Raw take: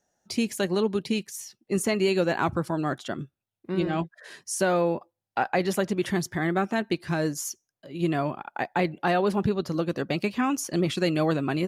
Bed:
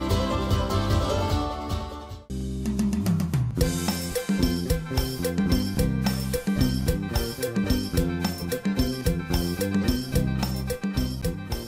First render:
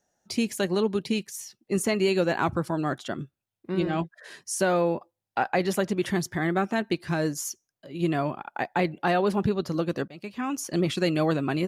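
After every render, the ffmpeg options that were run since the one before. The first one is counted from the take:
ffmpeg -i in.wav -filter_complex "[0:a]asplit=2[link_01][link_02];[link_01]atrim=end=10.08,asetpts=PTS-STARTPTS,afade=type=out:start_time=10.076:duration=0.004:curve=hsin:silence=0.0630957[link_03];[link_02]atrim=start=10.08,asetpts=PTS-STARTPTS,afade=type=in:duration=0.69:silence=0.0630957[link_04];[link_03][link_04]concat=n=2:v=0:a=1" out.wav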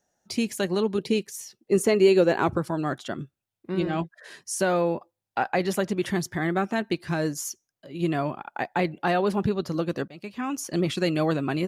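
ffmpeg -i in.wav -filter_complex "[0:a]asettb=1/sr,asplit=3[link_01][link_02][link_03];[link_01]atrim=end=0.984[link_04];[link_02]atrim=start=0.98:end=2.58,asetpts=PTS-STARTPTS,afade=type=in:duration=0.004:curve=qsin,afade=type=out:start_time=1.596:duration=0.004:curve=qsin,equalizer=frequency=430:width_type=o:width=0.77:gain=8[link_05];[link_03]atrim=start=2.576[link_06];[link_04][link_05]acrossfade=duration=0.004:curve1=hsin:curve2=qsin[link_07];[link_07][link_06]acrossfade=duration=0.004:curve1=qsin:curve2=hsin" out.wav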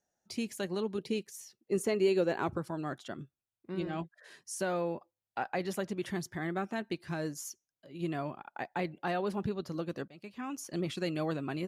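ffmpeg -i in.wav -af "volume=-9.5dB" out.wav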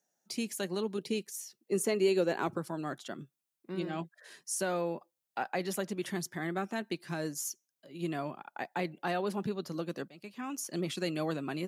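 ffmpeg -i in.wav -af "highpass=frequency=140:width=0.5412,highpass=frequency=140:width=1.3066,highshelf=frequency=5400:gain=8" out.wav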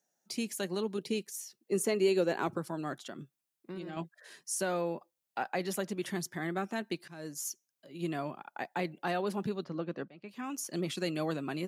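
ffmpeg -i in.wav -filter_complex "[0:a]asettb=1/sr,asplit=3[link_01][link_02][link_03];[link_01]atrim=end=2.934[link_04];[link_02]atrim=start=2.93:end=3.97,asetpts=PTS-STARTPTS,afade=type=in:duration=0.004:curve=qsin,afade=type=out:start_time=1.036:duration=0.004:curve=qsin,acompressor=threshold=-37dB:ratio=6:attack=3.2:release=140:knee=1:detection=peak[link_05];[link_03]atrim=start=3.966[link_06];[link_04][link_05]acrossfade=duration=0.004:curve1=hsin:curve2=qsin[link_07];[link_07][link_06]acrossfade=duration=0.004:curve1=qsin:curve2=hsin,asettb=1/sr,asplit=3[link_08][link_09][link_10];[link_08]atrim=end=9.644[link_11];[link_09]atrim=start=9.64:end=10.29,asetpts=PTS-STARTPTS,afade=type=in:duration=0.004:curve=qsin,afade=type=out:start_time=0.646:duration=0.004:curve=qsin,lowpass=2600[link_12];[link_10]atrim=start=10.286[link_13];[link_11][link_12]acrossfade=duration=0.004:curve1=hsin:curve2=qsin[link_14];[link_14][link_13]acrossfade=duration=0.004:curve1=qsin:curve2=hsin,asplit=2[link_15][link_16];[link_15]atrim=end=7.08,asetpts=PTS-STARTPTS,afade=type=out:start_time=7.076:duration=0.004:curve=hsin:silence=0.11885[link_17];[link_16]atrim=start=7.08,asetpts=PTS-STARTPTS,afade=type=in:duration=0.41:silence=0.11885[link_18];[link_17][link_18]concat=n=2:v=0:a=1" out.wav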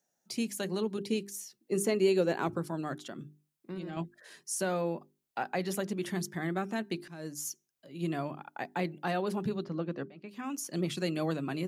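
ffmpeg -i in.wav -af "lowshelf=frequency=190:gain=8,bandreject=frequency=50:width_type=h:width=6,bandreject=frequency=100:width_type=h:width=6,bandreject=frequency=150:width_type=h:width=6,bandreject=frequency=200:width_type=h:width=6,bandreject=frequency=250:width_type=h:width=6,bandreject=frequency=300:width_type=h:width=6,bandreject=frequency=350:width_type=h:width=6,bandreject=frequency=400:width_type=h:width=6" out.wav

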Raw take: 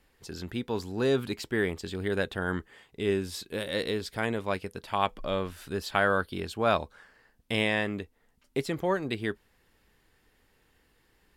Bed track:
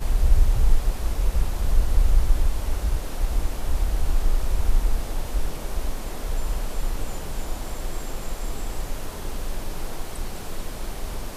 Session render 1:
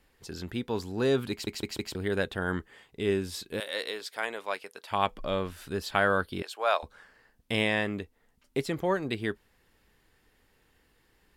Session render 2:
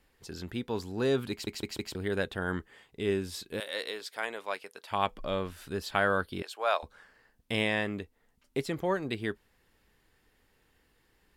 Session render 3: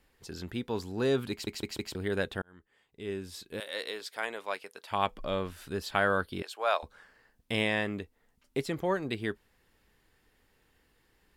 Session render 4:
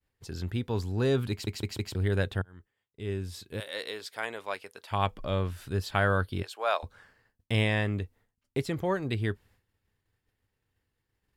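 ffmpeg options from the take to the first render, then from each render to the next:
ffmpeg -i in.wav -filter_complex "[0:a]asettb=1/sr,asplit=3[link_01][link_02][link_03];[link_01]atrim=end=3.604[link_04];[link_02]atrim=start=3.6:end=4.91,asetpts=PTS-STARTPTS,afade=type=in:duration=0.004:curve=qsin,afade=type=out:start_time=1.306:duration=0.004:curve=qsin,highpass=600[link_05];[link_03]atrim=start=4.906[link_06];[link_04][link_05]acrossfade=duration=0.004:curve1=hsin:curve2=qsin[link_07];[link_07][link_06]acrossfade=duration=0.004:curve1=qsin:curve2=hsin,asettb=1/sr,asplit=3[link_08][link_09][link_10];[link_08]atrim=end=6.424[link_11];[link_09]atrim=start=6.42:end=6.83,asetpts=PTS-STARTPTS,afade=type=in:duration=0.004:curve=qsin,afade=type=out:start_time=0.406:duration=0.004:curve=qsin,highpass=frequency=540:width=0.5412,highpass=frequency=540:width=1.3066[link_12];[link_10]atrim=start=6.826[link_13];[link_11][link_12]acrossfade=duration=0.004:curve1=hsin:curve2=qsin[link_14];[link_14][link_13]acrossfade=duration=0.004:curve1=qsin:curve2=hsin,asplit=5[link_15][link_16][link_17][link_18][link_19];[link_15]atrim=end=1.472[link_20];[link_16]atrim=start=1.308:end=1.472[link_21];[link_17]atrim=start=1.308:end=1.472[link_22];[link_18]atrim=start=1.308:end=1.472[link_23];[link_19]atrim=start=1.948[link_24];[link_20][link_21]acrossfade=duration=0.004:curve1=hsin:curve2=hsin[link_25];[link_25][link_22]acrossfade=duration=0.004:curve1=hsin:curve2=hsin[link_26];[link_26][link_23]acrossfade=duration=0.004:curve1=hsin:curve2=hsin[link_27];[link_27][link_24]acrossfade=duration=0.004:curve1=hsin:curve2=hsin" out.wav
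ffmpeg -i in.wav -af "volume=-2dB" out.wav
ffmpeg -i in.wav -filter_complex "[0:a]asplit=2[link_01][link_02];[link_01]atrim=end=2.42,asetpts=PTS-STARTPTS,afade=type=out:start_time=2.416:duration=0.004:curve=hsin[link_03];[link_02]atrim=start=2.42,asetpts=PTS-STARTPTS,afade=type=in:duration=1.56[link_04];[link_03][link_04]concat=n=2:v=0:a=1" out.wav
ffmpeg -i in.wav -af "agate=range=-33dB:threshold=-58dB:ratio=3:detection=peak,equalizer=frequency=100:width=1.6:gain=13.5" out.wav

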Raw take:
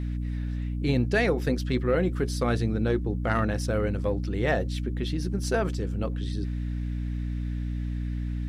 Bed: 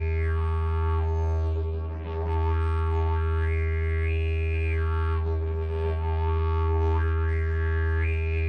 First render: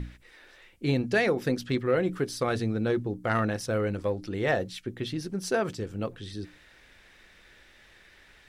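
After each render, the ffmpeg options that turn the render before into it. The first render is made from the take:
ffmpeg -i in.wav -af "bandreject=frequency=60:width_type=h:width=6,bandreject=frequency=120:width_type=h:width=6,bandreject=frequency=180:width_type=h:width=6,bandreject=frequency=240:width_type=h:width=6,bandreject=frequency=300:width_type=h:width=6" out.wav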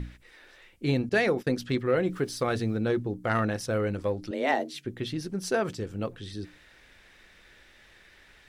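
ffmpeg -i in.wav -filter_complex "[0:a]asettb=1/sr,asplit=3[link_01][link_02][link_03];[link_01]atrim=end=1.094[link_04];[link_02]atrim=start=1.09:end=1.54,asetpts=PTS-STARTPTS,afade=type=in:duration=0.004:curve=qsin,afade=type=out:start_time=0.446:duration=0.004:curve=qsin,agate=range=-21dB:threshold=-38dB:ratio=16:release=100:detection=peak[link_05];[link_03]atrim=start=1.536[link_06];[link_04][link_05]acrossfade=duration=0.004:curve1=hsin:curve2=qsin[link_07];[link_07][link_06]acrossfade=duration=0.004:curve1=qsin:curve2=hsin,asettb=1/sr,asplit=3[link_08][link_09][link_10];[link_08]atrim=end=2.094[link_11];[link_09]atrim=start=2.09:end=2.77,asetpts=PTS-STARTPTS,afade=type=in:duration=0.004:curve=qsin,afade=type=out:start_time=0.676:duration=0.004:curve=qsin,aeval=exprs='val(0)*gte(abs(val(0)),0.00211)':channel_layout=same[link_12];[link_10]atrim=start=2.766[link_13];[link_11][link_12]acrossfade=duration=0.004:curve1=hsin:curve2=qsin[link_14];[link_14][link_13]acrossfade=duration=0.004:curve1=qsin:curve2=hsin,asettb=1/sr,asplit=3[link_15][link_16][link_17];[link_15]atrim=end=4.314[link_18];[link_16]atrim=start=4.31:end=4.85,asetpts=PTS-STARTPTS,afade=type=in:duration=0.004:curve=qsin,afade=type=out:start_time=0.536:duration=0.004:curve=qsin,afreqshift=130[link_19];[link_17]atrim=start=4.846[link_20];[link_18][link_19]acrossfade=duration=0.004:curve1=hsin:curve2=qsin[link_21];[link_21][link_20]acrossfade=duration=0.004:curve1=qsin:curve2=hsin" out.wav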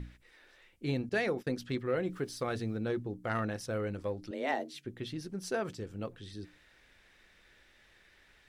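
ffmpeg -i in.wav -af "volume=-7dB" out.wav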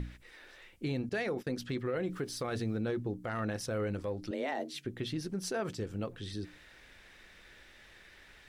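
ffmpeg -i in.wav -filter_complex "[0:a]asplit=2[link_01][link_02];[link_02]acompressor=threshold=-43dB:ratio=6,volume=0.5dB[link_03];[link_01][link_03]amix=inputs=2:normalize=0,alimiter=level_in=2.5dB:limit=-24dB:level=0:latency=1:release=44,volume=-2.5dB" out.wav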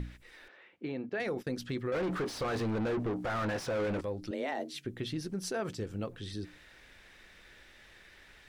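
ffmpeg -i in.wav -filter_complex "[0:a]asettb=1/sr,asplit=3[link_01][link_02][link_03];[link_01]atrim=end=0.484[link_04];[link_02]atrim=start=0.48:end=1.2,asetpts=PTS-STARTPTS,afade=type=in:duration=0.004:curve=qsin,afade=type=out:start_time=0.716:duration=0.004:curve=qsin,highpass=240,lowpass=2400[link_05];[link_03]atrim=start=1.196[link_06];[link_04][link_05]acrossfade=duration=0.004:curve1=hsin:curve2=qsin[link_07];[link_07][link_06]acrossfade=duration=0.004:curve1=qsin:curve2=hsin,asettb=1/sr,asplit=3[link_08][link_09][link_10];[link_08]atrim=end=1.924[link_11];[link_09]atrim=start=1.92:end=4.01,asetpts=PTS-STARTPTS,afade=type=in:duration=0.004:curve=qsin,afade=type=out:start_time=2.086:duration=0.004:curve=qsin,asplit=2[link_12][link_13];[link_13]highpass=frequency=720:poles=1,volume=28dB,asoftclip=type=tanh:threshold=-26dB[link_14];[link_12][link_14]amix=inputs=2:normalize=0,lowpass=frequency=1500:poles=1,volume=-6dB[link_15];[link_10]atrim=start=4.006[link_16];[link_11][link_15]acrossfade=duration=0.004:curve1=hsin:curve2=qsin[link_17];[link_17][link_16]acrossfade=duration=0.004:curve1=qsin:curve2=hsin" out.wav

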